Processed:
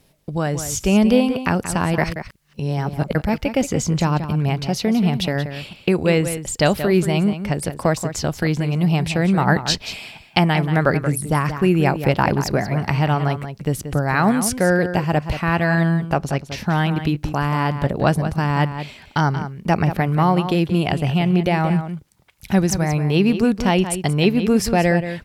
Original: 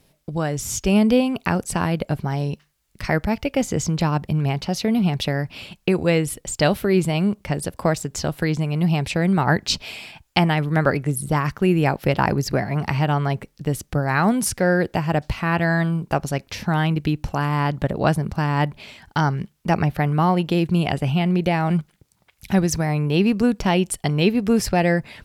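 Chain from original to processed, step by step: 1.98–3.15 s: reverse; 16.05–16.58 s: treble shelf 7.7 kHz -7 dB; echo from a far wall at 31 m, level -10 dB; trim +1.5 dB

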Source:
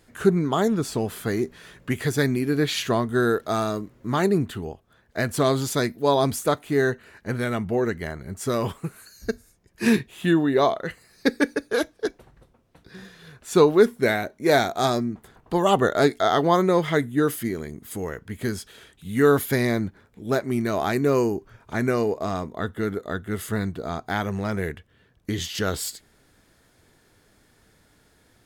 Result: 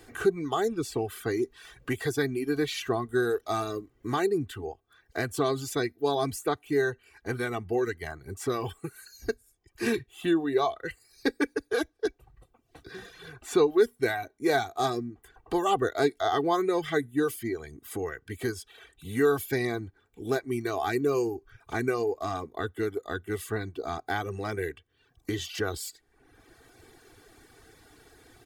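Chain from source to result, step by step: comb 2.6 ms, depth 69%; reverb removal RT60 0.68 s; three bands compressed up and down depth 40%; trim -6.5 dB

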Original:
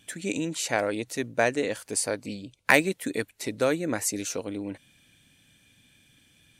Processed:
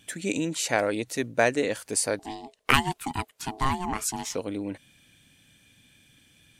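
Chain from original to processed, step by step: 2.19–4.35 s: ring modulator 540 Hz; trim +1.5 dB

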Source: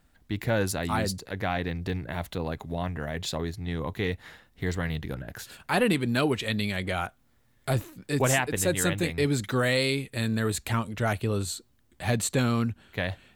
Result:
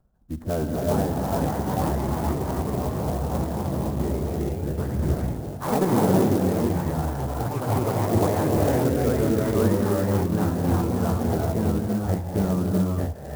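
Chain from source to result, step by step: local Wiener filter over 15 samples; low-pass 1.2 kHz 24 dB/octave; vibrato 1.7 Hz 23 cents; formant-preserving pitch shift -4.5 st; gated-style reverb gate 430 ms rising, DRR -1.5 dB; ever faster or slower copies 545 ms, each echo +2 st, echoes 3; sampling jitter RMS 0.047 ms

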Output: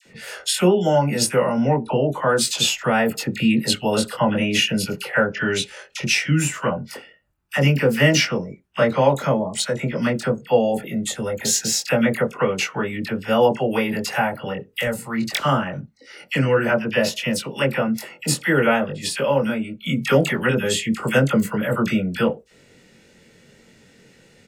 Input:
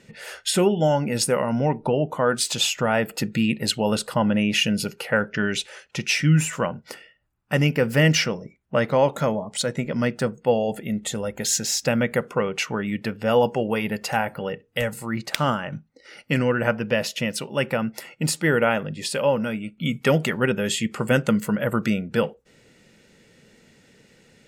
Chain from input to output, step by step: doubling 22 ms -4 dB; phase dispersion lows, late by 59 ms, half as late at 1.1 kHz; trim +1.5 dB

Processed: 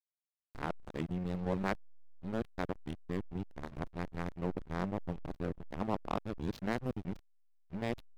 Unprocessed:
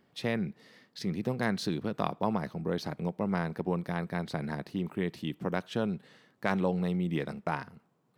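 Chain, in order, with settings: reverse the whole clip; hysteresis with a dead band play -26 dBFS; trim -3.5 dB

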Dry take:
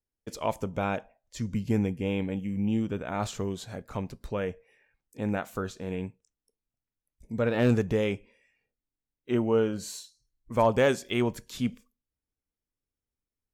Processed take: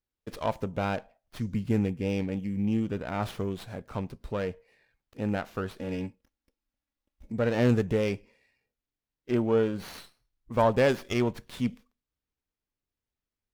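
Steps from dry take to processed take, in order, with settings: 5.78–7.32 s: comb 3.6 ms, depth 80%; sliding maximum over 5 samples

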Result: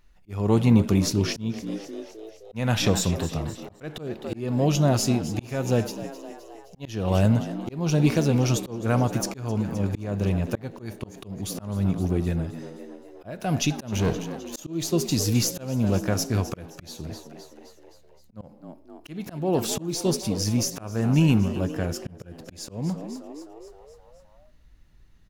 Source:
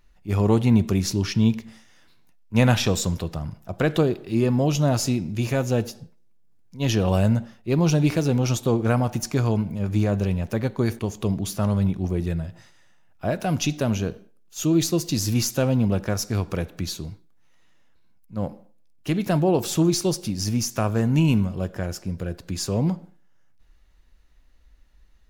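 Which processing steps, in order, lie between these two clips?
13.92–14.60 s: waveshaping leveller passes 3; frequency-shifting echo 260 ms, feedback 58%, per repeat +72 Hz, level -14 dB; slow attack 324 ms

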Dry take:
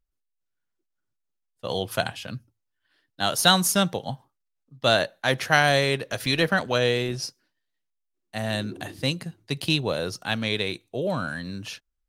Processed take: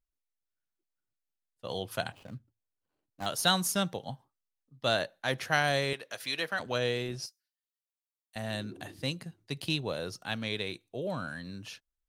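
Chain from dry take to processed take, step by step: 2.12–3.26 s: median filter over 25 samples; 5.93–6.60 s: high-pass 750 Hz 6 dB/octave; 7.26–8.36 s: differentiator; trim -8 dB

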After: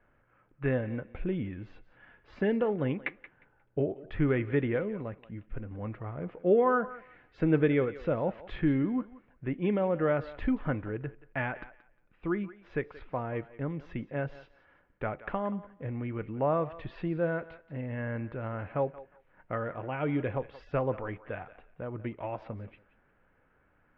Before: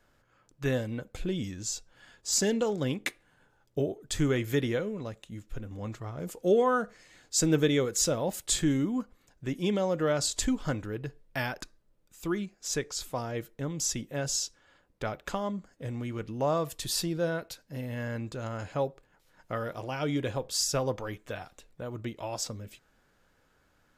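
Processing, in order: steep low-pass 2.5 kHz 36 dB/octave; thinning echo 178 ms, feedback 20%, high-pass 450 Hz, level -15.5 dB

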